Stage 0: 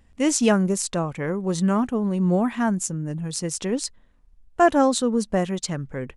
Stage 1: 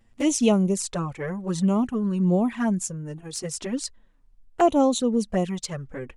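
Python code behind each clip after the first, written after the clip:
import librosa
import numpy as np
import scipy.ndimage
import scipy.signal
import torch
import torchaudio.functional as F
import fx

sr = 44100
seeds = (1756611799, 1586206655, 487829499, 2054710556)

y = fx.env_flanger(x, sr, rest_ms=9.0, full_db=-17.0)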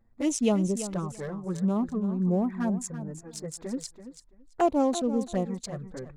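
y = fx.wiener(x, sr, points=15)
y = fx.echo_feedback(y, sr, ms=334, feedback_pct=17, wet_db=-12.0)
y = F.gain(torch.from_numpy(y), -4.5).numpy()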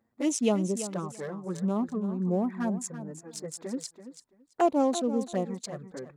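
y = scipy.signal.sosfilt(scipy.signal.butter(2, 190.0, 'highpass', fs=sr, output='sos'), x)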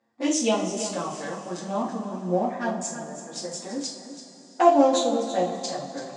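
y = fx.cabinet(x, sr, low_hz=210.0, low_slope=12, high_hz=7700.0, hz=(220.0, 430.0, 740.0, 3400.0, 4900.0), db=(-4, -8, 6, 4, 5))
y = fx.rev_double_slope(y, sr, seeds[0], early_s=0.39, late_s=4.4, knee_db=-19, drr_db=-5.5)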